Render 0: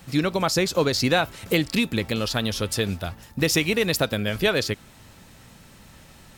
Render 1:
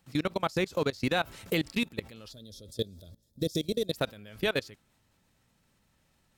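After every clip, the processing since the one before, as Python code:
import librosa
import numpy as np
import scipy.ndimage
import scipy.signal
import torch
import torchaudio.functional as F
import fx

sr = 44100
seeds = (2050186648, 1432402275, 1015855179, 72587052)

y = fx.level_steps(x, sr, step_db=22)
y = fx.spec_box(y, sr, start_s=2.32, length_s=1.6, low_hz=660.0, high_hz=3200.0, gain_db=-19)
y = y * librosa.db_to_amplitude(-4.0)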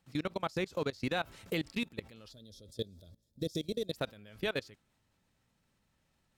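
y = fx.high_shelf(x, sr, hz=9600.0, db=-6.0)
y = y * librosa.db_to_amplitude(-5.5)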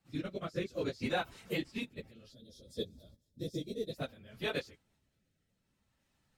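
y = fx.phase_scramble(x, sr, seeds[0], window_ms=50)
y = fx.rotary(y, sr, hz=0.6)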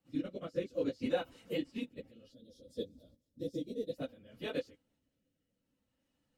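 y = fx.small_body(x, sr, hz=(280.0, 500.0, 2900.0), ring_ms=45, db=13)
y = y * librosa.db_to_amplitude(-7.5)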